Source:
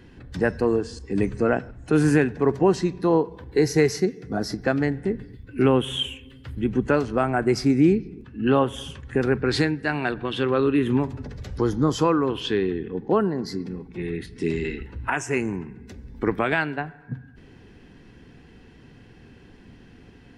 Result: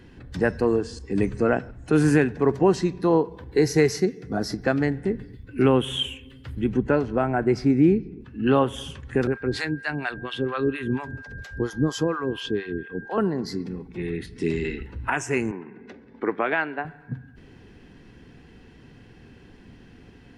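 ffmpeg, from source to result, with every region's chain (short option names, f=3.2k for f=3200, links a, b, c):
-filter_complex "[0:a]asettb=1/sr,asplit=3[a][b][c];[a]atrim=end=6.774[d];[b]atrim=start=6.77:end=8.22,asetpts=PTS-STARTPTS,afade=t=in:d=0.004:c=qsin,afade=t=out:st=1.446:d=0.004:c=qsin,lowpass=f=1.9k:p=1,bandreject=f=1.2k:w=9.7[e];[c]atrim=start=8.216[f];[d][e]acrossfade=d=0.004:c1=hsin:c2=qsin[g];[g][f]acrossfade=d=0.004:c1=qsin:c2=hsin,asettb=1/sr,asplit=3[h][i][j];[h]atrim=end=9.274[k];[i]atrim=start=9.27:end=13.18,asetpts=PTS-STARTPTS,afade=t=in:d=0.004:c=qsin,afade=t=out:st=3.906:d=0.004:c=qsin,acrossover=split=650[l][m];[l]aeval=exprs='val(0)*(1-1/2+1/2*cos(2*PI*4.3*n/s))':c=same[n];[m]aeval=exprs='val(0)*(1-1/2-1/2*cos(2*PI*4.3*n/s))':c=same[o];[n][o]amix=inputs=2:normalize=0,aeval=exprs='val(0)+0.01*sin(2*PI*1600*n/s)':c=same[p];[j]atrim=start=13.176[q];[k][p]acrossfade=d=0.004:c1=hsin:c2=qsin[r];[r][q]acrossfade=d=0.004:c1=qsin:c2=hsin,asettb=1/sr,asplit=3[s][t][u];[s]atrim=end=15.514[v];[t]atrim=start=15.51:end=16.85,asetpts=PTS-STARTPTS,afade=t=in:d=0.004:c=qsin,afade=t=out:st=1.336:d=0.004:c=qsin,acompressor=mode=upward:threshold=-29dB:ratio=2.5:attack=3.2:release=140:knee=2.83:detection=peak,highpass=310,lowpass=2.5k[w];[u]atrim=start=16.846[x];[v][w]acrossfade=d=0.004:c1=hsin:c2=qsin[y];[y][x]acrossfade=d=0.004:c1=qsin:c2=hsin"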